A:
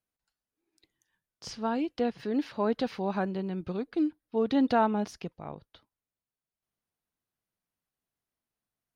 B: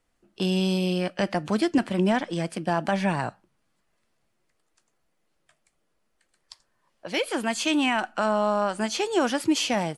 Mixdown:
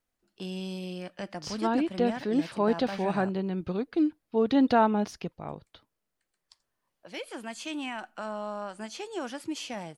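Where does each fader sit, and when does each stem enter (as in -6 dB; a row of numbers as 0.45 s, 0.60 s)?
+2.5 dB, -12.0 dB; 0.00 s, 0.00 s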